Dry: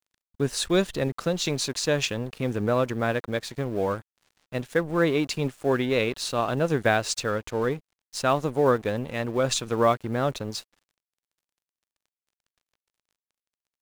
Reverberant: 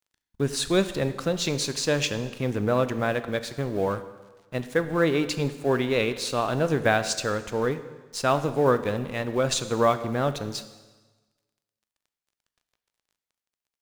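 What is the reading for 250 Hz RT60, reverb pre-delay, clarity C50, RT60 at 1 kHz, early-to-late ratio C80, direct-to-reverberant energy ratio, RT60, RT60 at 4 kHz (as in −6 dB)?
1.3 s, 6 ms, 12.5 dB, 1.3 s, 14.0 dB, 11.0 dB, 1.3 s, 1.2 s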